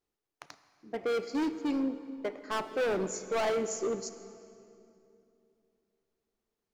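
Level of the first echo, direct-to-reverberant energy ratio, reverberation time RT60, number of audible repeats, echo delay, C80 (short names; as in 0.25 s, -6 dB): none, 11.0 dB, 2.7 s, none, none, 12.5 dB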